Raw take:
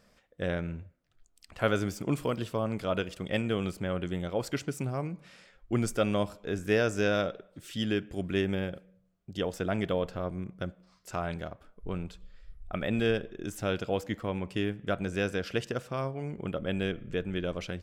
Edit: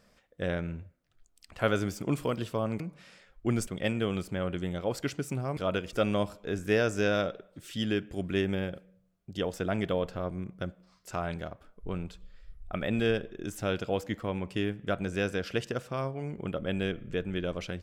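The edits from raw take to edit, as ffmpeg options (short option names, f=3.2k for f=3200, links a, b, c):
-filter_complex "[0:a]asplit=5[a][b][c][d][e];[a]atrim=end=2.802[f];[b]atrim=start=5.058:end=5.932[g];[c]atrim=start=3.158:end=5.062[h];[d]atrim=start=2.798:end=3.162[i];[e]atrim=start=5.928[j];[f][g]acrossfade=d=0.004:c1=hsin:c2=hsin[k];[k][h]acrossfade=d=0.004:c1=hsin:c2=hsin[l];[l][i]acrossfade=d=0.004:c1=hsin:c2=hsin[m];[m][j]acrossfade=d=0.004:c1=hsin:c2=hsin"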